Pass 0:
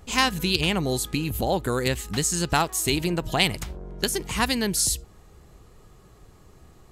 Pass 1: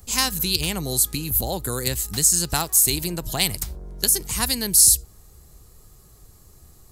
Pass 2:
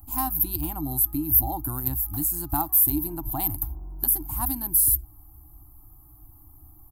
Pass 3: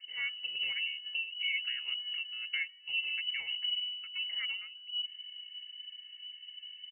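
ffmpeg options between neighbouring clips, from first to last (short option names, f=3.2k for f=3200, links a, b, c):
-filter_complex "[0:a]highshelf=f=7.7k:g=7.5,acrossover=split=120|980|2500[a][b][c][d];[a]acontrast=82[e];[d]aexciter=amount=3.4:drive=3.9:freq=4k[f];[e][b][c][f]amix=inputs=4:normalize=0,volume=-4.5dB"
-af "firequalizer=gain_entry='entry(110,0);entry(200,-15);entry(300,9);entry(440,-29);entry(780,3);entry(1900,-22);entry(6400,-27);entry(13000,6)':delay=0.05:min_phase=1"
-af "aecho=1:1:2.4:0.34,areverse,acompressor=threshold=-30dB:ratio=5,areverse,lowpass=f=2.6k:t=q:w=0.5098,lowpass=f=2.6k:t=q:w=0.6013,lowpass=f=2.6k:t=q:w=0.9,lowpass=f=2.6k:t=q:w=2.563,afreqshift=-3000"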